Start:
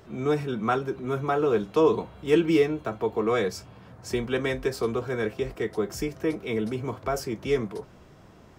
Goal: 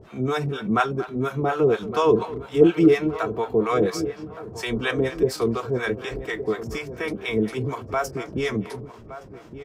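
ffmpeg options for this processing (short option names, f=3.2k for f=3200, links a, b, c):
-filter_complex "[0:a]acrossover=split=630[a][b];[a]aeval=exprs='val(0)*(1-1/2+1/2*cos(2*PI*4.7*n/s))':c=same[c];[b]aeval=exprs='val(0)*(1-1/2-1/2*cos(2*PI*4.7*n/s))':c=same[d];[c][d]amix=inputs=2:normalize=0,atempo=0.89,asplit=2[e][f];[f]adelay=1167,lowpass=f=1.4k:p=1,volume=-12.5dB,asplit=2[g][h];[h]adelay=1167,lowpass=f=1.4k:p=1,volume=0.4,asplit=2[i][j];[j]adelay=1167,lowpass=f=1.4k:p=1,volume=0.4,asplit=2[k][l];[l]adelay=1167,lowpass=f=1.4k:p=1,volume=0.4[m];[g][i][k][m]amix=inputs=4:normalize=0[n];[e][n]amix=inputs=2:normalize=0,aresample=32000,aresample=44100,asplit=2[o][p];[p]adelay=230,highpass=300,lowpass=3.4k,asoftclip=type=hard:threshold=-20.5dB,volume=-15dB[q];[o][q]amix=inputs=2:normalize=0,volume=8dB"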